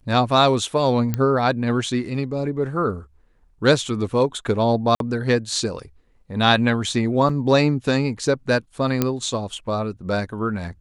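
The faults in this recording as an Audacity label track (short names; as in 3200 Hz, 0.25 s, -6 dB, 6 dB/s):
1.140000	1.140000	pop -10 dBFS
4.950000	5.000000	gap 52 ms
7.290000	7.290000	gap 3.6 ms
9.020000	9.020000	pop -5 dBFS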